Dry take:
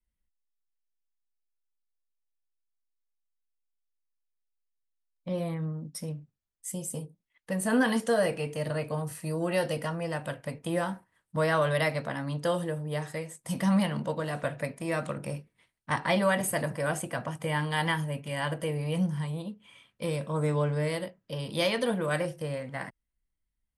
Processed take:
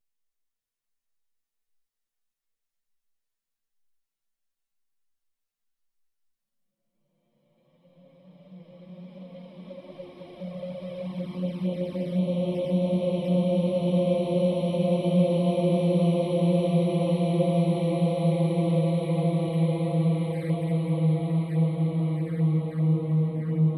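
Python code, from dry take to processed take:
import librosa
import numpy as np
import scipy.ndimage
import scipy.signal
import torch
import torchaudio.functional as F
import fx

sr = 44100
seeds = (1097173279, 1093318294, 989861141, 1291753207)

y = fx.paulstretch(x, sr, seeds[0], factor=25.0, window_s=0.5, from_s=4.77)
y = fx.echo_diffused(y, sr, ms=672, feedback_pct=53, wet_db=-4.0)
y = fx.env_flanger(y, sr, rest_ms=8.8, full_db=-29.5)
y = y * 10.0 ** (6.5 / 20.0)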